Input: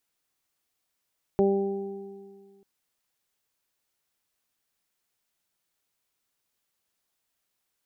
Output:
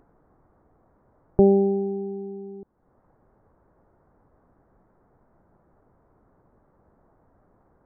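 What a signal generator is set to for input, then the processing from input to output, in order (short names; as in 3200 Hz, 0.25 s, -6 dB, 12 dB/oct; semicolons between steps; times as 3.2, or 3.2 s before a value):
additive tone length 1.24 s, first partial 197 Hz, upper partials 5/-5/-7 dB, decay 1.94 s, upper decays 1.92/0.83/1.71 s, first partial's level -23.5 dB
low shelf 120 Hz +6 dB; in parallel at +3 dB: upward compressor, threshold -29 dBFS; on the sum: Gaussian blur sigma 8.8 samples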